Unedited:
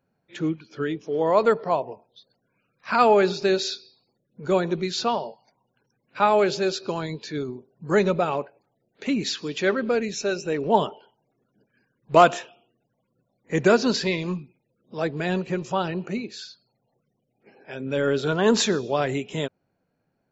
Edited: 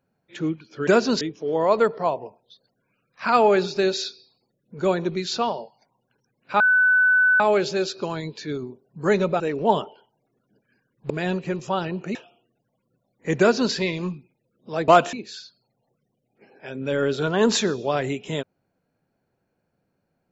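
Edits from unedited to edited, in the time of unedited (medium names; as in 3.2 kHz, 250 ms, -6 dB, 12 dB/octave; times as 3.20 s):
6.26 s: add tone 1.5 kHz -14 dBFS 0.80 s
8.26–10.45 s: delete
12.15–12.40 s: swap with 15.13–16.18 s
13.64–13.98 s: copy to 0.87 s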